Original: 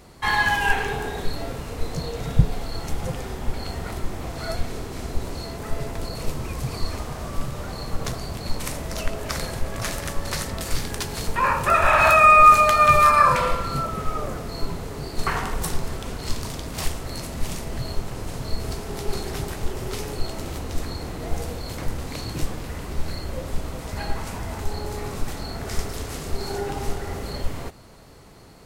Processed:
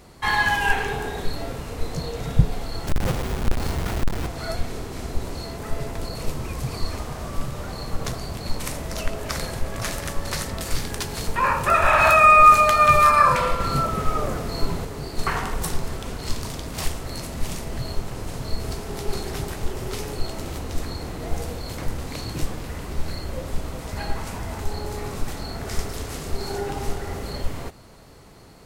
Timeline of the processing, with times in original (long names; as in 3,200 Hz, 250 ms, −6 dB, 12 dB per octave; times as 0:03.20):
0:02.87–0:04.27: each half-wave held at its own peak
0:13.60–0:14.85: clip gain +3.5 dB